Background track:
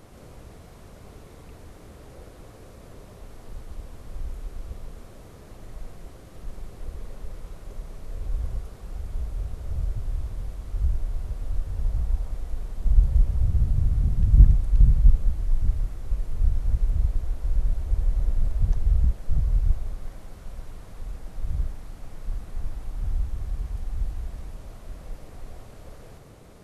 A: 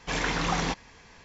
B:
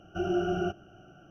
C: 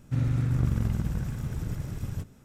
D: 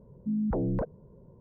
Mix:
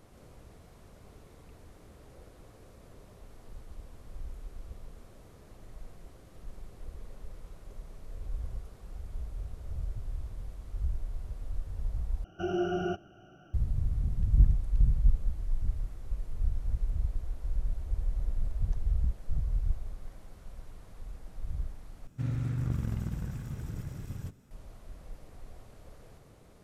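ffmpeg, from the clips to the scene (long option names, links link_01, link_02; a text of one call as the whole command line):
ffmpeg -i bed.wav -i cue0.wav -i cue1.wav -i cue2.wav -filter_complex "[0:a]volume=-8dB,asplit=3[link_01][link_02][link_03];[link_01]atrim=end=12.244[link_04];[2:a]atrim=end=1.3,asetpts=PTS-STARTPTS,volume=-2dB[link_05];[link_02]atrim=start=13.536:end=22.074[link_06];[3:a]atrim=end=2.44,asetpts=PTS-STARTPTS,volume=-6dB[link_07];[link_03]atrim=start=24.506[link_08];[link_04][link_05]acrossfade=duration=0.004:curve1=hsin:curve2=hsin[link_09];[link_09][link_06]acrossfade=duration=0.004:curve1=hsin:curve2=hsin[link_10];[link_10][link_07]acrossfade=duration=0.004:curve1=hsin:curve2=hsin[link_11];[link_11][link_08]acrossfade=duration=0.004:curve1=hsin:curve2=hsin" out.wav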